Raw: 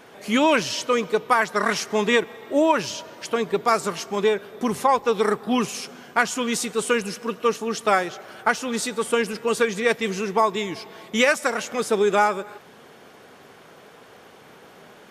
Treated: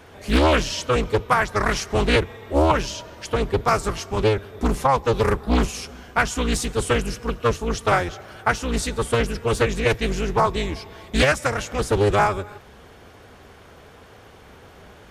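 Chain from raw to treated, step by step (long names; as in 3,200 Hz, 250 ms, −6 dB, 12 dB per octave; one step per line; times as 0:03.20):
sub-octave generator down 2 octaves, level +4 dB
highs frequency-modulated by the lows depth 0.73 ms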